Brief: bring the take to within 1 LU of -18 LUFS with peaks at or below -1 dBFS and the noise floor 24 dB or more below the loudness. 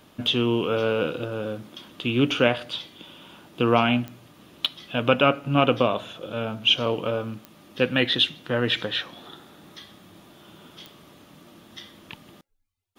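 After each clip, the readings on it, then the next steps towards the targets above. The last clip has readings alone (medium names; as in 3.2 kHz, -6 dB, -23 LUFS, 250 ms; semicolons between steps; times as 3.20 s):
clicks found 4; loudness -24.0 LUFS; peak level -4.0 dBFS; loudness target -18.0 LUFS
-> de-click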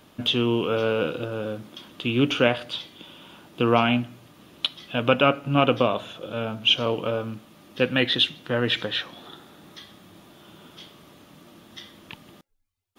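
clicks found 0; loudness -24.0 LUFS; peak level -4.0 dBFS; loudness target -18.0 LUFS
-> trim +6 dB; peak limiter -1 dBFS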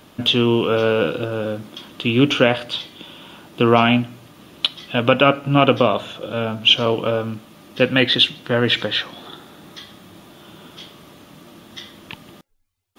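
loudness -18.0 LUFS; peak level -1.0 dBFS; noise floor -49 dBFS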